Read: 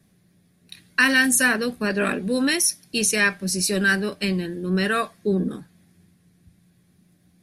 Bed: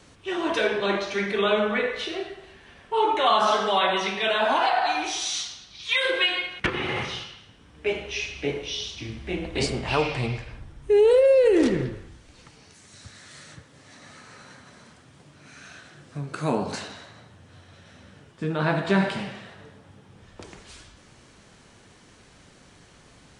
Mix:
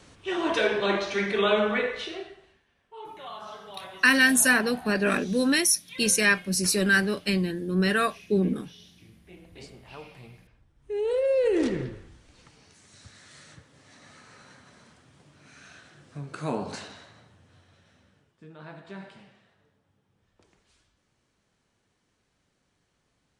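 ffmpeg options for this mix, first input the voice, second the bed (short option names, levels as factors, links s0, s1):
-filter_complex "[0:a]adelay=3050,volume=0.841[s0];[1:a]volume=5.62,afade=t=out:st=1.68:d=0.98:silence=0.1,afade=t=in:st=10.74:d=0.7:silence=0.16788,afade=t=out:st=16.97:d=1.48:silence=0.16788[s1];[s0][s1]amix=inputs=2:normalize=0"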